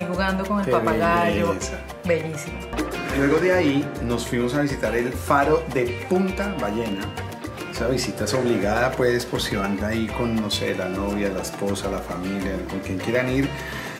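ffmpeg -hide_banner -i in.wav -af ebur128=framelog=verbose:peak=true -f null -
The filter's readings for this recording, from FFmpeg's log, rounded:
Integrated loudness:
  I:         -23.4 LUFS
  Threshold: -33.4 LUFS
Loudness range:
  LRA:         3.6 LU
  Threshold: -43.4 LUFS
  LRA low:   -25.3 LUFS
  LRA high:  -21.7 LUFS
True peak:
  Peak:       -5.3 dBFS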